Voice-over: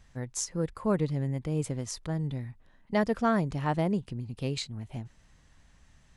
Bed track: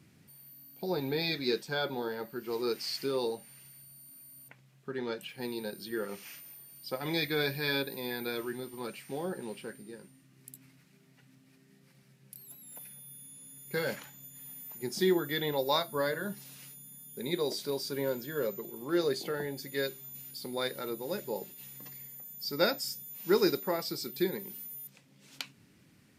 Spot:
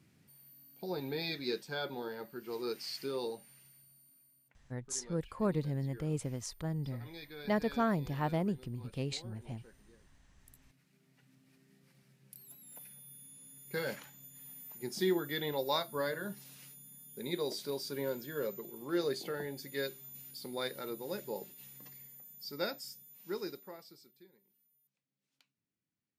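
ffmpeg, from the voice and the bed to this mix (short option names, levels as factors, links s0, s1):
-filter_complex "[0:a]adelay=4550,volume=0.562[s0];[1:a]volume=2.51,afade=t=out:st=3.44:d=0.98:silence=0.251189,afade=t=in:st=10.2:d=1.33:silence=0.211349,afade=t=out:st=21.39:d=2.85:silence=0.0446684[s1];[s0][s1]amix=inputs=2:normalize=0"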